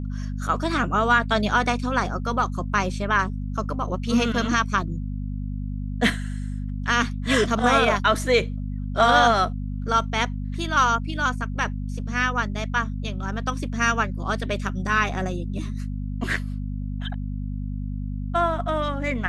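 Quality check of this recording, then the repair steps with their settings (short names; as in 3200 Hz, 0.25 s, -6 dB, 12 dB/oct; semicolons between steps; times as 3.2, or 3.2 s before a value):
hum 50 Hz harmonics 5 -29 dBFS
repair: de-hum 50 Hz, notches 5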